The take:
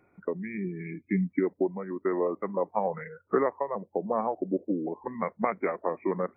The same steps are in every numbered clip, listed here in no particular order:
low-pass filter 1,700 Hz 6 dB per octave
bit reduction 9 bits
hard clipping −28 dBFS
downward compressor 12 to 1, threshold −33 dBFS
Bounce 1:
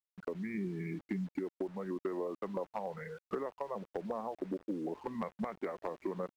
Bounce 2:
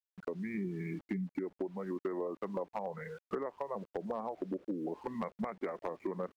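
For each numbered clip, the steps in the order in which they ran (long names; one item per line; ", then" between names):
downward compressor, then bit reduction, then low-pass filter, then hard clipping
bit reduction, then low-pass filter, then downward compressor, then hard clipping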